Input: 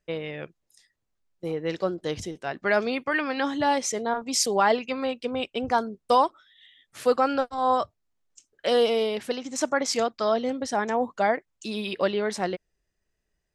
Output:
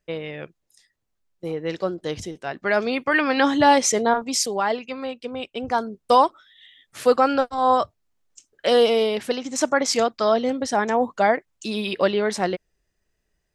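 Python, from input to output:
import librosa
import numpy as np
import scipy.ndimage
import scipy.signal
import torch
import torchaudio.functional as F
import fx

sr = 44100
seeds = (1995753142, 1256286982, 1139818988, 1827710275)

y = fx.gain(x, sr, db=fx.line((2.72, 1.5), (3.36, 8.0), (4.08, 8.0), (4.55, -2.0), (5.43, -2.0), (6.19, 4.5)))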